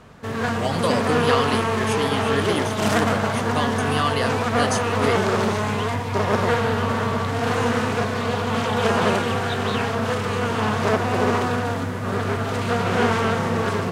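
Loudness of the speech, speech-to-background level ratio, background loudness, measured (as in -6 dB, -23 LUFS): -27.0 LUFS, -5.0 dB, -22.0 LUFS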